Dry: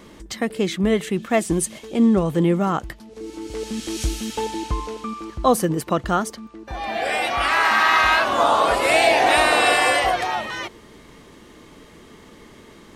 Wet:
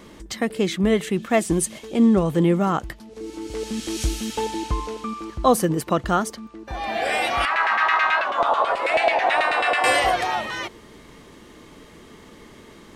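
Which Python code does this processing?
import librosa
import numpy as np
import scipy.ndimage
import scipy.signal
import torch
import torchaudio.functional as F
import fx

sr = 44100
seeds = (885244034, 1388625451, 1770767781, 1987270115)

y = fx.filter_lfo_bandpass(x, sr, shape='saw_down', hz=9.2, low_hz=590.0, high_hz=2500.0, q=1.2, at=(7.45, 9.84))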